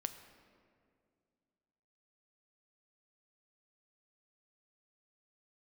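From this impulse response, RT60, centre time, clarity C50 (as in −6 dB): 2.2 s, 18 ms, 10.5 dB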